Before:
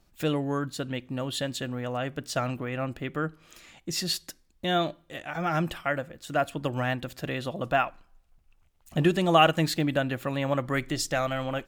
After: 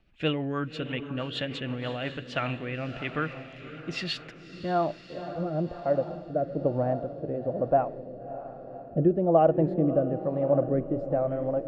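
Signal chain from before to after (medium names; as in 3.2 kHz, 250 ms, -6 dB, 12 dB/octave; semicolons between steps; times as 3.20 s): low-pass sweep 2.7 kHz -> 570 Hz, 4.20–5.09 s; echo that smears into a reverb 579 ms, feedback 49%, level -10 dB; rotary cabinet horn 6.3 Hz, later 1.1 Hz, at 1.66 s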